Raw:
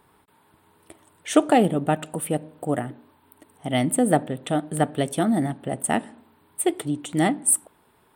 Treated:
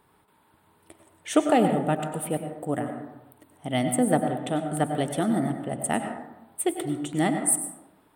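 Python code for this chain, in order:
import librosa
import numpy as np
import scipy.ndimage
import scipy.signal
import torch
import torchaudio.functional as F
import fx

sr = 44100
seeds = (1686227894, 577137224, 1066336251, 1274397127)

y = fx.rev_plate(x, sr, seeds[0], rt60_s=0.97, hf_ratio=0.35, predelay_ms=85, drr_db=6.0)
y = F.gain(torch.from_numpy(y), -3.5).numpy()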